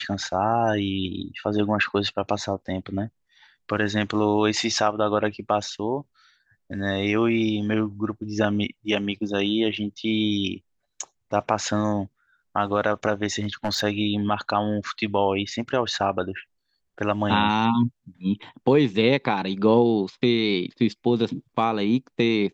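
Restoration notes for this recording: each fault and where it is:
13.41–13.80 s: clipped -20 dBFS

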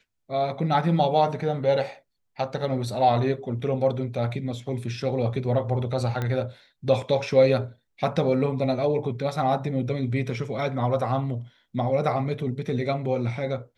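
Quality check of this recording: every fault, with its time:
6.22 s: pop -16 dBFS

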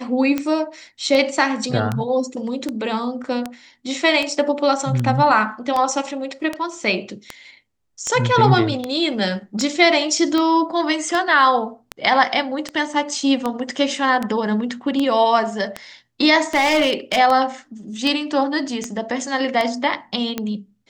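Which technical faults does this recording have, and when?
tick 78 rpm -9 dBFS
16.54–17.19 s: clipped -12.5 dBFS

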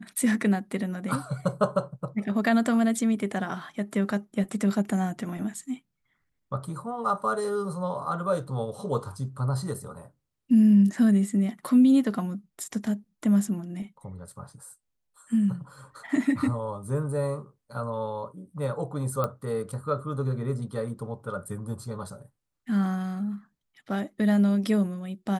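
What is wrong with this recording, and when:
19.24 s: pop -15 dBFS

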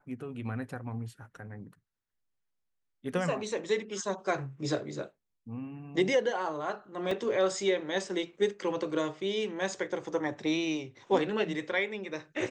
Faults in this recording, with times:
7.11 s: dropout 3.4 ms

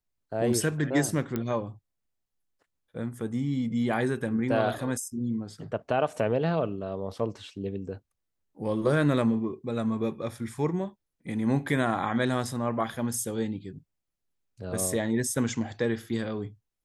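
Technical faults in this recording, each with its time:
1.36 s: pop -17 dBFS

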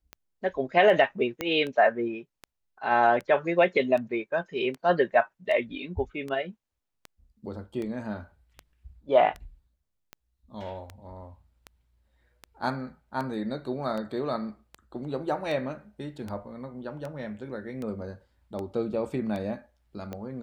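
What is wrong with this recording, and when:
tick 78 rpm -23 dBFS
1.41 s: pop -15 dBFS

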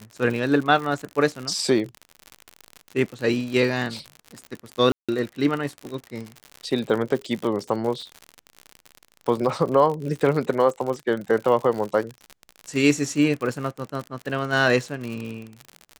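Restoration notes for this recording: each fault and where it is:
crackle 71 per s -28 dBFS
4.92–5.09 s: dropout 166 ms

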